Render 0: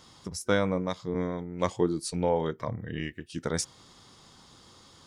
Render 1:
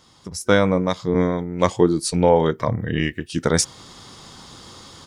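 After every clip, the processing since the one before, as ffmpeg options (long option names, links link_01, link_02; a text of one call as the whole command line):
ffmpeg -i in.wav -af "dynaudnorm=framelen=240:gausssize=3:maxgain=12.5dB" out.wav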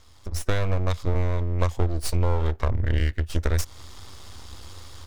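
ffmpeg -i in.wav -af "aeval=exprs='max(val(0),0)':channel_layout=same,lowshelf=frequency=110:width_type=q:width=3:gain=9.5,acompressor=threshold=-18dB:ratio=6" out.wav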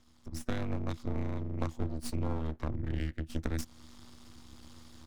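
ffmpeg -i in.wav -af "tremolo=f=240:d=0.824,volume=-8dB" out.wav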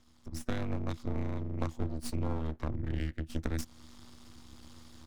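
ffmpeg -i in.wav -af anull out.wav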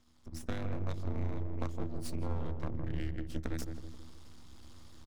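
ffmpeg -i in.wav -filter_complex "[0:a]asplit=2[link_01][link_02];[link_02]adelay=161,lowpass=frequency=830:poles=1,volume=-4dB,asplit=2[link_03][link_04];[link_04]adelay=161,lowpass=frequency=830:poles=1,volume=0.52,asplit=2[link_05][link_06];[link_06]adelay=161,lowpass=frequency=830:poles=1,volume=0.52,asplit=2[link_07][link_08];[link_08]adelay=161,lowpass=frequency=830:poles=1,volume=0.52,asplit=2[link_09][link_10];[link_10]adelay=161,lowpass=frequency=830:poles=1,volume=0.52,asplit=2[link_11][link_12];[link_12]adelay=161,lowpass=frequency=830:poles=1,volume=0.52,asplit=2[link_13][link_14];[link_14]adelay=161,lowpass=frequency=830:poles=1,volume=0.52[link_15];[link_01][link_03][link_05][link_07][link_09][link_11][link_13][link_15]amix=inputs=8:normalize=0,volume=-3.5dB" out.wav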